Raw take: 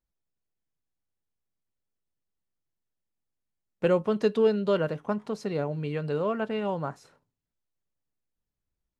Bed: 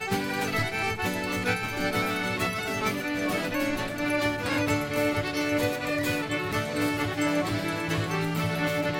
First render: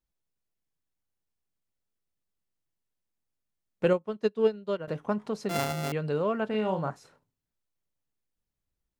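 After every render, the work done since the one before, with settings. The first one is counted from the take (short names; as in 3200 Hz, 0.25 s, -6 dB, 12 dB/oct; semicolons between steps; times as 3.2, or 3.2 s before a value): 3.93–4.88 upward expander 2.5:1, over -33 dBFS; 5.49–5.92 sample sorter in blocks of 64 samples; 6.49–6.9 doubler 42 ms -7 dB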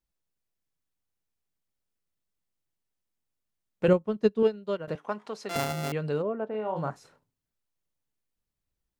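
3.88–4.43 low shelf 300 Hz +10 dB; 4.95–5.56 weighting filter A; 6.21–6.75 band-pass 310 Hz -> 920 Hz, Q 0.97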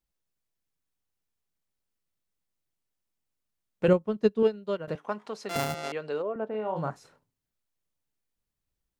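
5.74–6.36 BPF 370–6800 Hz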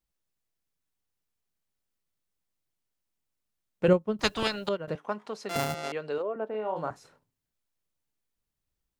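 4.19–4.69 spectral compressor 4:1; 6.18–6.91 HPF 250 Hz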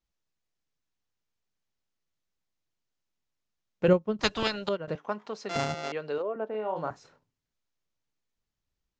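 steep low-pass 7100 Hz 48 dB/oct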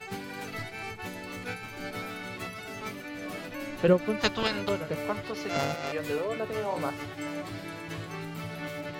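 add bed -10 dB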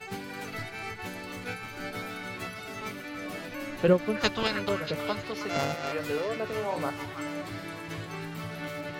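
delay with a stepping band-pass 0.317 s, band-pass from 1500 Hz, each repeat 1.4 oct, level -5 dB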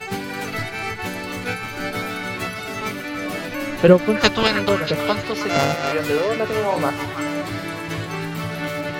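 gain +10.5 dB; limiter -1 dBFS, peak gain reduction 1 dB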